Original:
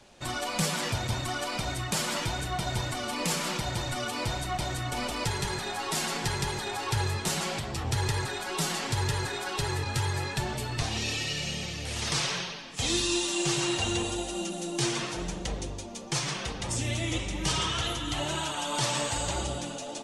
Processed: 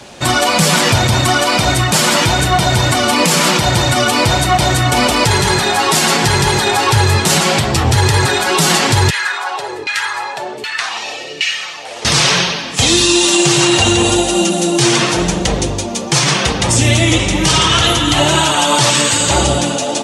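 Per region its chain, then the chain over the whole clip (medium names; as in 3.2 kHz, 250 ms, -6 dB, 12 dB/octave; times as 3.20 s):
9.10–12.05 s: tilt EQ +4 dB/octave + LFO band-pass saw down 1.3 Hz 340–2300 Hz
18.90–19.30 s: high-pass 140 Hz + peaking EQ 740 Hz -11 dB 0.82 oct
whole clip: high-pass 67 Hz; loudness maximiser +21 dB; trim -1 dB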